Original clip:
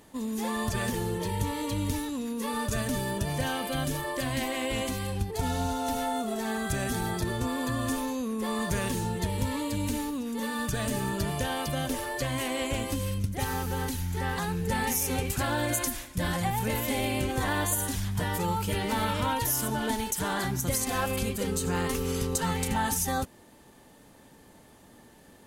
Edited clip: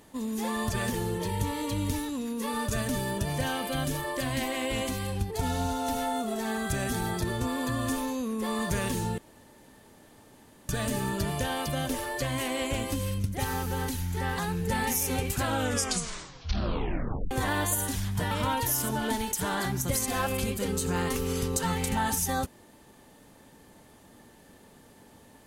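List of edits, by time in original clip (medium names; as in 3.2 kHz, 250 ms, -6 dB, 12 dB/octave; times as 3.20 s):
9.18–10.69 s: room tone
15.38 s: tape stop 1.93 s
18.31–19.10 s: delete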